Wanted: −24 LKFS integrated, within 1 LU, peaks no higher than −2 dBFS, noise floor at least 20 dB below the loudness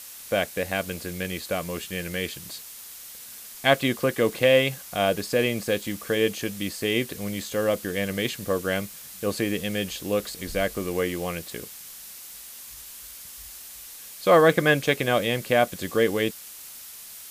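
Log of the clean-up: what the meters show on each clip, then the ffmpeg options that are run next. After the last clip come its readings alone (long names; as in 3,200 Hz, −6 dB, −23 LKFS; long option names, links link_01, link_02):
background noise floor −43 dBFS; target noise floor −45 dBFS; integrated loudness −25.0 LKFS; sample peak −3.5 dBFS; target loudness −24.0 LKFS
→ -af "afftdn=noise_reduction=6:noise_floor=-43"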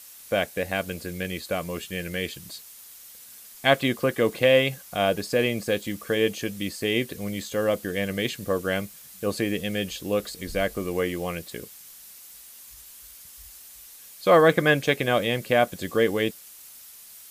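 background noise floor −47 dBFS; integrated loudness −25.0 LKFS; sample peak −4.0 dBFS; target loudness −24.0 LKFS
→ -af "volume=1dB"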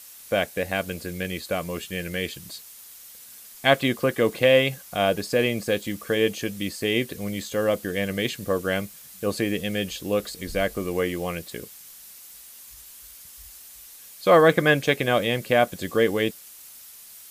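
integrated loudness −24.0 LKFS; sample peak −3.0 dBFS; background noise floor −46 dBFS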